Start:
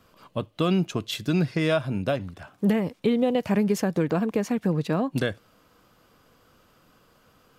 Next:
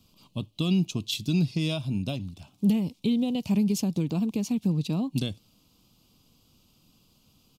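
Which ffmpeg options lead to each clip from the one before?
-af "firequalizer=gain_entry='entry(230,0);entry(490,-14);entry(890,-9);entry(1700,-26);entry(2500,-3);entry(3900,3);entry(8700,1)':delay=0.05:min_phase=1"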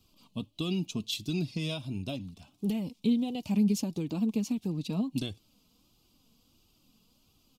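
-af "flanger=delay=2.3:depth=2.5:regen=32:speed=1.5:shape=triangular"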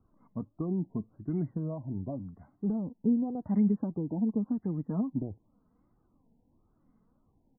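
-af "afftfilt=real='re*lt(b*sr/1024,970*pow(2200/970,0.5+0.5*sin(2*PI*0.9*pts/sr)))':imag='im*lt(b*sr/1024,970*pow(2200/970,0.5+0.5*sin(2*PI*0.9*pts/sr)))':win_size=1024:overlap=0.75"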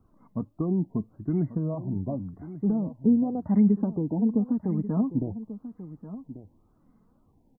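-af "aecho=1:1:1139:0.2,volume=1.88"

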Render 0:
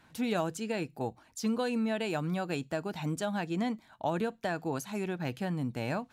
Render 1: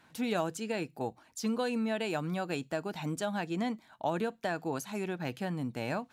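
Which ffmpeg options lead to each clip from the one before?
-af "lowshelf=f=87:g=-11.5"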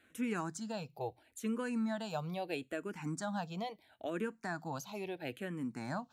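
-filter_complex "[0:a]asplit=2[s0][s1];[s1]afreqshift=-0.75[s2];[s0][s2]amix=inputs=2:normalize=1,volume=0.794"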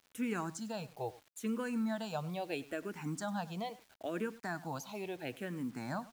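-filter_complex "[0:a]asplit=2[s0][s1];[s1]adelay=99.13,volume=0.112,highshelf=f=4000:g=-2.23[s2];[s0][s2]amix=inputs=2:normalize=0,acrusher=bits=9:mix=0:aa=0.000001"

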